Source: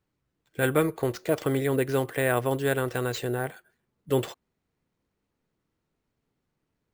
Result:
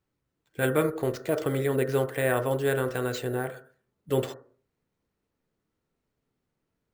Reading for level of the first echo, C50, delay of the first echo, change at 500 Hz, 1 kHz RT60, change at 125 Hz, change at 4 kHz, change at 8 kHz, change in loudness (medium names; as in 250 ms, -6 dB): no echo, 12.5 dB, no echo, 0.0 dB, 0.40 s, -1.0 dB, -2.0 dB, -2.0 dB, -0.5 dB